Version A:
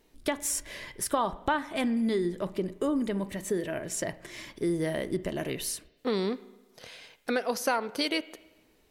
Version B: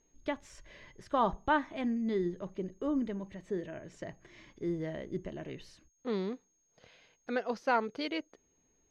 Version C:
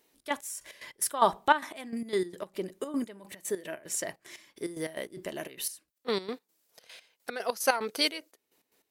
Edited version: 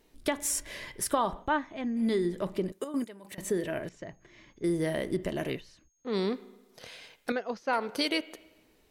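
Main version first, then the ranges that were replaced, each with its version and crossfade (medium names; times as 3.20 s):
A
1.44–1.98 s: from B, crossfade 0.10 s
2.72–3.38 s: from C
3.89–4.64 s: from B
5.58–6.13 s: from B, crossfade 0.06 s
7.32–7.73 s: from B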